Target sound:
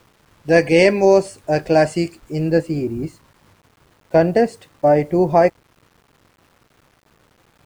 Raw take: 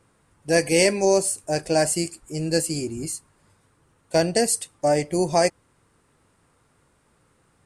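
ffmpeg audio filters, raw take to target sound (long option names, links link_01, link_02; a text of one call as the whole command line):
ffmpeg -i in.wav -af "asetnsamples=nb_out_samples=441:pad=0,asendcmd='2.5 lowpass f 1700',lowpass=2900,acrusher=bits=9:mix=0:aa=0.000001,volume=6.5dB" out.wav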